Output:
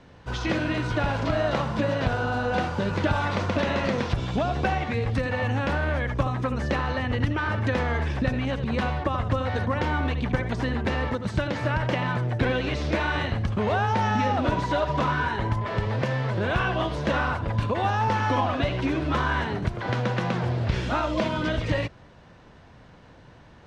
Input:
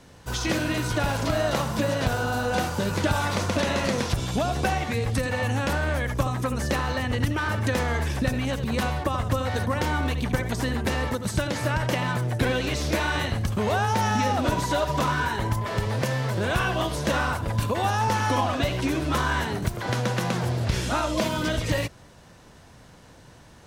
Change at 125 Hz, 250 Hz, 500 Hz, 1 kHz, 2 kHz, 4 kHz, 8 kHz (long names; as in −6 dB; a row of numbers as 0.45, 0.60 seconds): 0.0, 0.0, 0.0, 0.0, −0.5, −3.5, −13.5 decibels